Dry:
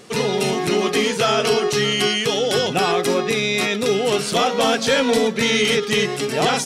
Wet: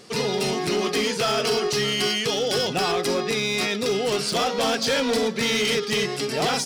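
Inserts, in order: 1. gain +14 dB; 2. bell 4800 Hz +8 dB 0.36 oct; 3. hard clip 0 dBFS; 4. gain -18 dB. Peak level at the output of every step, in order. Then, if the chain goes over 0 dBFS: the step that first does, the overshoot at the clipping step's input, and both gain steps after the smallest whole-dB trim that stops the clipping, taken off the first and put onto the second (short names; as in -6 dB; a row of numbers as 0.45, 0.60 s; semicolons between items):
+5.5, +7.0, 0.0, -18.0 dBFS; step 1, 7.0 dB; step 1 +7 dB, step 4 -11 dB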